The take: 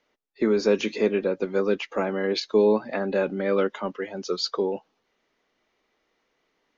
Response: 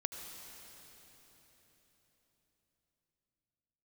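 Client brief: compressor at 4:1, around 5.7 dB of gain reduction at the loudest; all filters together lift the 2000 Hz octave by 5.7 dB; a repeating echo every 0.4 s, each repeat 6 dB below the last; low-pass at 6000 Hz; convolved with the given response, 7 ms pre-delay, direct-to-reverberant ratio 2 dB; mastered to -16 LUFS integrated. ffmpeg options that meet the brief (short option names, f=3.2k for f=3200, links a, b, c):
-filter_complex "[0:a]lowpass=6k,equalizer=f=2k:t=o:g=7.5,acompressor=threshold=-21dB:ratio=4,aecho=1:1:400|800|1200|1600|2000|2400:0.501|0.251|0.125|0.0626|0.0313|0.0157,asplit=2[a][b];[1:a]atrim=start_sample=2205,adelay=7[c];[b][c]afir=irnorm=-1:irlink=0,volume=-2.5dB[d];[a][d]amix=inputs=2:normalize=0,volume=8dB"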